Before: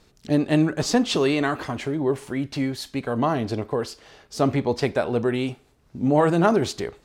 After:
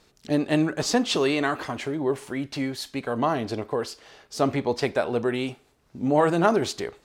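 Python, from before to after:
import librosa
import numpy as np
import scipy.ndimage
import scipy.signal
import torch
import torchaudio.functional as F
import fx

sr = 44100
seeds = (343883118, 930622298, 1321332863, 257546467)

y = fx.low_shelf(x, sr, hz=230.0, db=-7.5)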